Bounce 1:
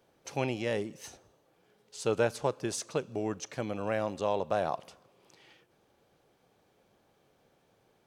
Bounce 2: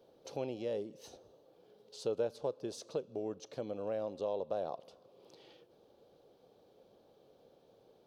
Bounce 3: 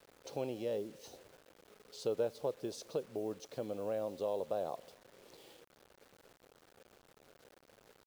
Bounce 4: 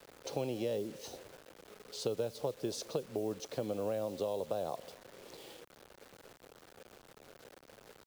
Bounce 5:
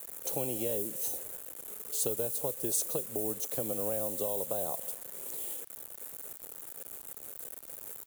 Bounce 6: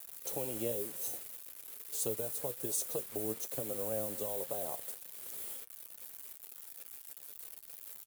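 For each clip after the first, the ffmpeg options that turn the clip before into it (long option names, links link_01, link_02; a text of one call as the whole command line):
ffmpeg -i in.wav -af "equalizer=frequency=250:width_type=o:width=1:gain=3,equalizer=frequency=500:width_type=o:width=1:gain=11,equalizer=frequency=2000:width_type=o:width=1:gain=-9,equalizer=frequency=4000:width_type=o:width=1:gain=8,equalizer=frequency=8000:width_type=o:width=1:gain=-7,acompressor=threshold=-51dB:ratio=1.5,volume=-3dB" out.wav
ffmpeg -i in.wav -af "acrusher=bits=9:mix=0:aa=0.000001" out.wav
ffmpeg -i in.wav -filter_complex "[0:a]acrossover=split=180|3000[link_01][link_02][link_03];[link_02]acompressor=threshold=-39dB:ratio=6[link_04];[link_01][link_04][link_03]amix=inputs=3:normalize=0,volume=6.5dB" out.wav
ffmpeg -i in.wav -af "aexciter=amount=10.8:drive=6.8:freq=7300,acrusher=bits=9:mix=0:aa=0.000001" out.wav
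ffmpeg -i in.wav -af "aeval=exprs='val(0)*gte(abs(val(0)),0.00794)':channel_layout=same,flanger=delay=6.9:depth=3.1:regen=55:speed=1.1:shape=triangular" out.wav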